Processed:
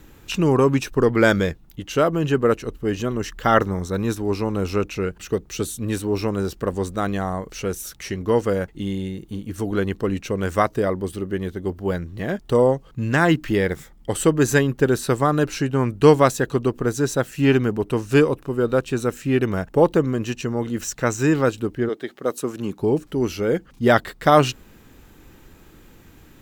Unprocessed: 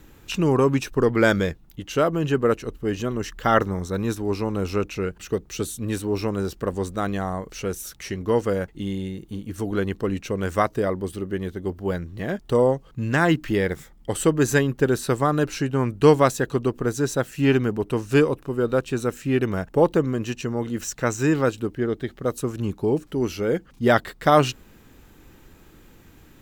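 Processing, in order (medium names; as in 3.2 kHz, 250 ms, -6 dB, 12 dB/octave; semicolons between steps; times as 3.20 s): 21.88–22.78 s: high-pass 360 Hz -> 160 Hz 12 dB/octave; trim +2 dB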